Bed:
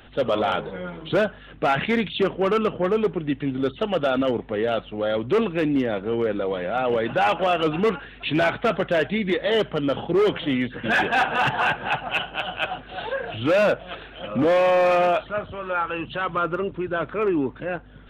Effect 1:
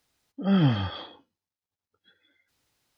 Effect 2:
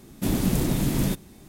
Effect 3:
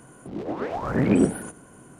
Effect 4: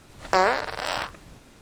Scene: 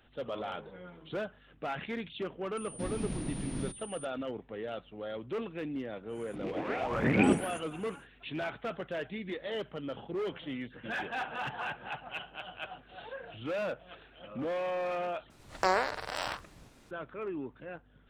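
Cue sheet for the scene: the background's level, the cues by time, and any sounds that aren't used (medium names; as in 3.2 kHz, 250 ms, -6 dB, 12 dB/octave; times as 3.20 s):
bed -15.5 dB
2.57 s: add 2 -13.5 dB + class-D stage that switches slowly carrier 9.3 kHz
6.08 s: add 3 -6.5 dB, fades 0.10 s + peaking EQ 2.4 kHz +12.5 dB 0.87 oct
15.30 s: replace with 4 -7.5 dB
not used: 1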